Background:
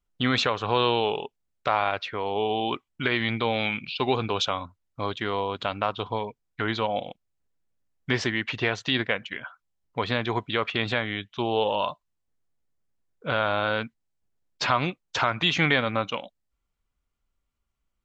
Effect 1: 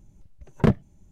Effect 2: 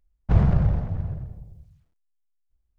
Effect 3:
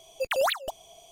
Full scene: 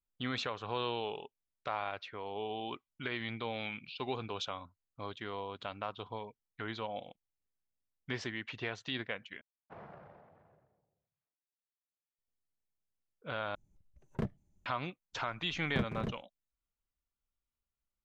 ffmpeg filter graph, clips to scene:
-filter_complex "[1:a]asplit=2[a][b];[0:a]volume=-13dB[c];[2:a]highpass=500,lowpass=2.5k[d];[b]aecho=1:1:157.4|209.9|277:0.355|0.316|0.562[e];[c]asplit=3[f][g][h];[f]atrim=end=9.414[i];[d]atrim=end=2.78,asetpts=PTS-STARTPTS,volume=-16dB[j];[g]atrim=start=12.186:end=13.554[k];[a]atrim=end=1.11,asetpts=PTS-STARTPTS,volume=-17dB[l];[h]atrim=start=14.656[m];[e]atrim=end=1.11,asetpts=PTS-STARTPTS,volume=-15.5dB,afade=t=in:d=0.02,afade=t=out:st=1.09:d=0.02,adelay=15120[n];[i][j]acrossfade=d=0.004:c1=hsin:c2=hsin[o];[o][k]acrossfade=d=0.004:c1=hsin:c2=hsin[p];[p][l]acrossfade=d=0.004:c1=hsin:c2=hsin[q];[q][m]acrossfade=d=0.004:c1=hsin:c2=hsin[r];[r][n]amix=inputs=2:normalize=0"

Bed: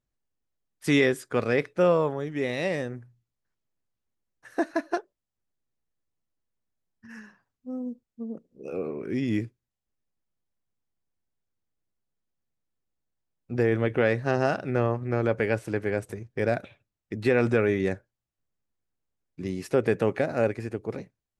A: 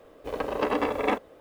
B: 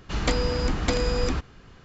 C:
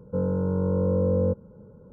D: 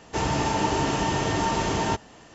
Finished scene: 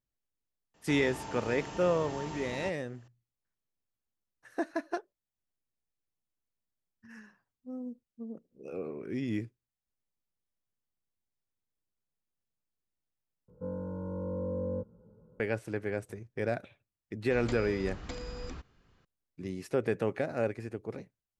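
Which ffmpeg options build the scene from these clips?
-filter_complex "[0:a]volume=-6.5dB[a];[3:a]asplit=2[b][c];[c]adelay=18,volume=-2.5dB[d];[b][d]amix=inputs=2:normalize=0[e];[a]asplit=2[f][g];[f]atrim=end=13.484[h];[e]atrim=end=1.92,asetpts=PTS-STARTPTS,volume=-12.5dB[i];[g]atrim=start=15.396[j];[4:a]atrim=end=2.34,asetpts=PTS-STARTPTS,volume=-17dB,afade=t=in:d=0.004:c=hsin,afade=t=out:st=2.336:d=0.004:c=hsin,adelay=740[k];[2:a]atrim=end=1.84,asetpts=PTS-STARTPTS,volume=-16.5dB,afade=t=in:d=0.004:c=hsin,afade=t=out:st=1.836:d=0.004:c=hsin,adelay=17210[l];[h][i]acrossfade=d=0.004:c1=hsin:c2=hsin[m];[m][j]acrossfade=d=0.004:c1=hsin:c2=hsin[n];[n][k][l]amix=inputs=3:normalize=0"

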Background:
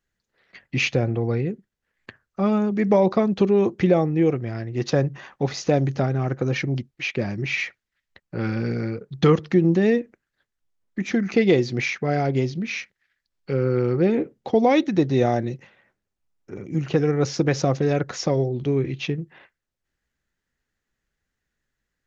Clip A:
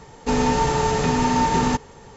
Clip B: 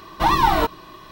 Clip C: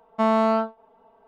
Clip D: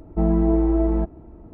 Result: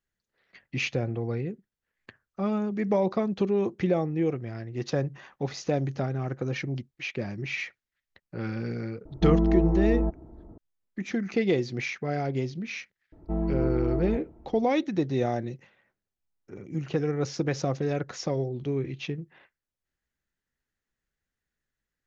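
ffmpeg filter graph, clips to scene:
-filter_complex "[4:a]asplit=2[a][b];[0:a]volume=-7dB[c];[a]lowpass=1.4k,atrim=end=1.53,asetpts=PTS-STARTPTS,volume=-4dB,afade=t=in:d=0.004:c=hsin,afade=t=out:st=1.526:d=0.004:c=hsin,adelay=9050[d];[b]atrim=end=1.53,asetpts=PTS-STARTPTS,volume=-9dB,afade=t=in:d=0.004:c=hsin,afade=t=out:st=1.526:d=0.004:c=hsin,adelay=13120[e];[c][d][e]amix=inputs=3:normalize=0"

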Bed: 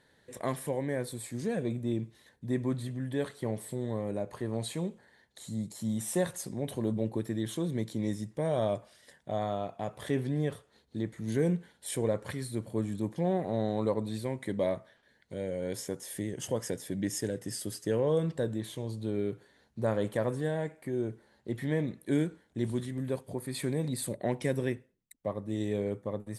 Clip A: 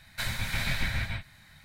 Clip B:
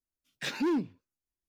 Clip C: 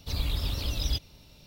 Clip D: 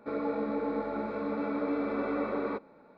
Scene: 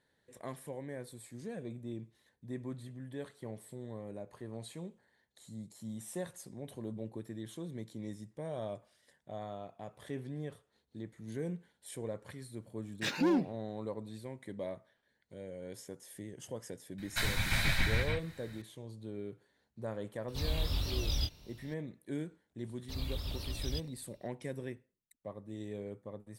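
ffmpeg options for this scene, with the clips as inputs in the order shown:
-filter_complex "[3:a]asplit=2[a][b];[0:a]volume=-10.5dB[c];[a]flanger=delay=20:depth=7.7:speed=1.5[d];[b]agate=range=-33dB:threshold=-49dB:ratio=3:release=100:detection=peak[e];[2:a]atrim=end=1.48,asetpts=PTS-STARTPTS,volume=-0.5dB,afade=t=in:d=0.004:c=hsin,afade=t=out:st=1.476:d=0.004:c=hsin,adelay=12600[f];[1:a]atrim=end=1.64,asetpts=PTS-STARTPTS,volume=-0.5dB,afade=t=in:d=0.004:c=hsin,afade=t=out:st=1.636:d=0.004:c=hsin,adelay=16980[g];[d]atrim=end=1.46,asetpts=PTS-STARTPTS,volume=-1dB,afade=t=in:d=0.004:c=hsin,afade=t=out:st=1.456:d=0.004:c=hsin,adelay=20280[h];[e]atrim=end=1.46,asetpts=PTS-STARTPTS,volume=-9dB,afade=t=in:d=0.004:c=hsin,afade=t=out:st=1.456:d=0.004:c=hsin,adelay=22820[i];[c][f][g][h][i]amix=inputs=5:normalize=0"

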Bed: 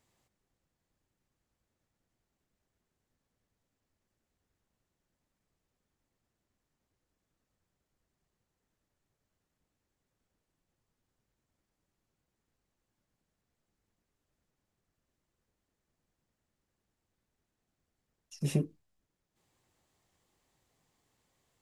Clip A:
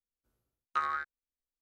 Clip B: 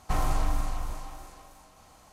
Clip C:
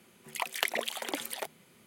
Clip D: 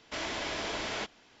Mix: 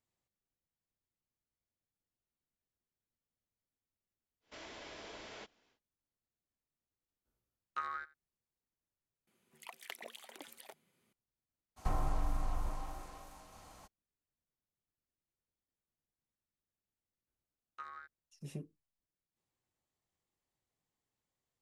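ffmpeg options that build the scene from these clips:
-filter_complex "[1:a]asplit=2[a][b];[0:a]volume=-15dB[c];[4:a]equalizer=f=470:t=o:w=0.72:g=3.5[d];[a]aecho=1:1:87:0.0891[e];[2:a]acrossover=split=1400|3300[f][g][h];[f]acompressor=threshold=-28dB:ratio=4[i];[g]acompressor=threshold=-59dB:ratio=4[j];[h]acompressor=threshold=-59dB:ratio=4[k];[i][j][k]amix=inputs=3:normalize=0[l];[c]asplit=2[m][n];[m]atrim=end=9.274[o];[3:a]atrim=end=1.86,asetpts=PTS-STARTPTS,volume=-17dB[p];[n]atrim=start=11.126[q];[d]atrim=end=1.4,asetpts=PTS-STARTPTS,volume=-15.5dB,afade=t=in:d=0.1,afade=t=out:st=1.3:d=0.1,adelay=4400[r];[e]atrim=end=1.61,asetpts=PTS-STARTPTS,volume=-8dB,afade=t=in:d=0.004:c=hsin,afade=t=out:st=1.606:d=0.004:c=hsin,adelay=7010[s];[l]atrim=end=2.12,asetpts=PTS-STARTPTS,volume=-1.5dB,afade=t=in:d=0.02,afade=t=out:st=2.1:d=0.02,adelay=11760[t];[b]atrim=end=1.61,asetpts=PTS-STARTPTS,volume=-16.5dB,afade=t=in:d=0.004:c=hsin,afade=t=out:st=1.606:d=0.004:c=hsin,adelay=17030[u];[o][p]acrossfade=d=0.004:c1=hsin:c2=hsin[v];[v][q]acrossfade=d=0.004:c1=hsin:c2=hsin[w];[w][r][s][t][u]amix=inputs=5:normalize=0"

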